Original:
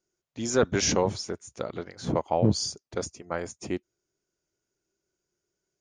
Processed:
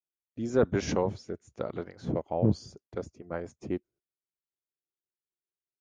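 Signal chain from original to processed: LPF 1000 Hz 6 dB/oct, from 0.88 s 1600 Hz, from 2.33 s 1000 Hz; gate -57 dBFS, range -22 dB; rotary speaker horn 1 Hz, later 8 Hz, at 2.24

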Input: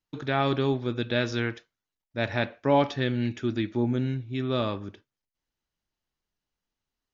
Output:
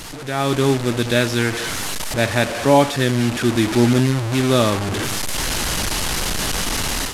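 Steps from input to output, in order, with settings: delta modulation 64 kbps, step -27.5 dBFS; AGC gain up to 12.5 dB

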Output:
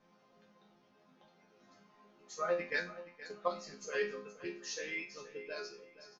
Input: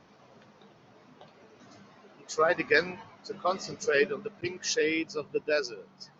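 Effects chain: resonator bank F3 minor, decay 0.38 s; 2.7–3.48 transient shaper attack +5 dB, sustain -5 dB; feedback echo 0.473 s, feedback 29%, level -15.5 dB; gain +6.5 dB

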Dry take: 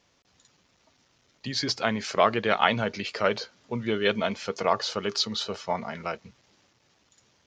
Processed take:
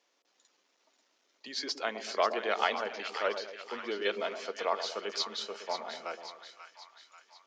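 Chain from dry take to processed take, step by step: HPF 310 Hz 24 dB/oct; split-band echo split 910 Hz, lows 0.118 s, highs 0.538 s, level -9 dB; gain -7 dB

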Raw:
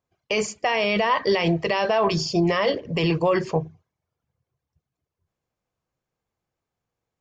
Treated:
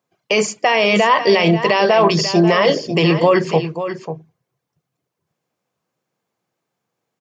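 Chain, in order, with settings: HPF 140 Hz 24 dB/oct; echo 0.542 s -10.5 dB; gain +7.5 dB

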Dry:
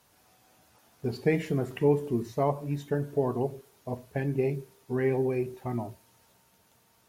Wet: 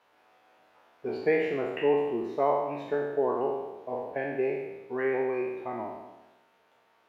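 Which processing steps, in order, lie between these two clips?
spectral trails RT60 1.09 s; three-band isolator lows -21 dB, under 320 Hz, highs -23 dB, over 3200 Hz; gain +1 dB

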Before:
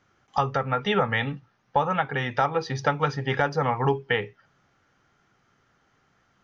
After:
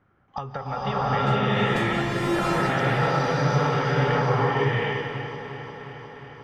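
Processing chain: 1.26–1.87 sample sorter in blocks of 128 samples; low shelf 260 Hz +5 dB; compressor 6:1, threshold -30 dBFS, peak gain reduction 14.5 dB; low-pass opened by the level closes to 1700 Hz, open at -26 dBFS; echo with dull and thin repeats by turns 0.178 s, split 1200 Hz, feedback 84%, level -10 dB; bloom reverb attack 0.74 s, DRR -11 dB

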